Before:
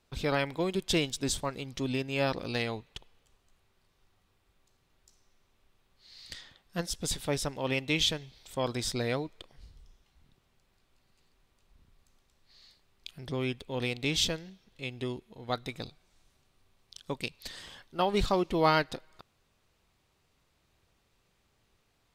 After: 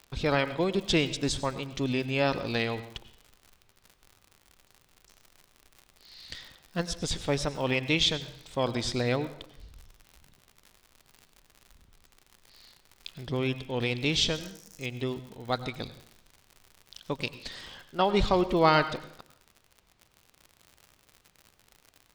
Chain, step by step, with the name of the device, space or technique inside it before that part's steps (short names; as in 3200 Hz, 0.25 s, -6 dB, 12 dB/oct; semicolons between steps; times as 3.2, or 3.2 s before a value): lo-fi chain (LPF 6000 Hz 12 dB/oct; wow and flutter; crackle 89/s -42 dBFS); 14.35–14.86 resonant high shelf 4600 Hz +8.5 dB, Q 3; plate-style reverb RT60 0.67 s, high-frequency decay 0.85×, pre-delay 80 ms, DRR 13.5 dB; gain +3 dB